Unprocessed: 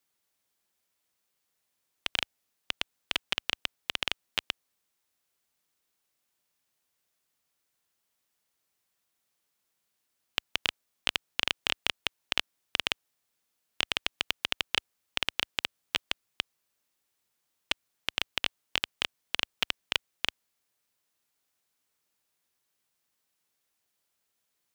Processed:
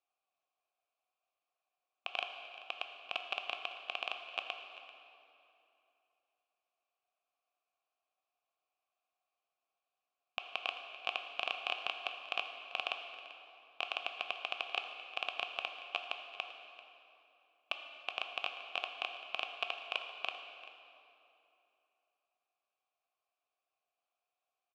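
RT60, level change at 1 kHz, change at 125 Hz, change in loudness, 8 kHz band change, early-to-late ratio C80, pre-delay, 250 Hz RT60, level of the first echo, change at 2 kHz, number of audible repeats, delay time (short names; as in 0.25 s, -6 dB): 2.9 s, 0.0 dB, under -40 dB, -7.5 dB, under -20 dB, 6.5 dB, 11 ms, 3.3 s, -17.0 dB, -5.5 dB, 1, 0.39 s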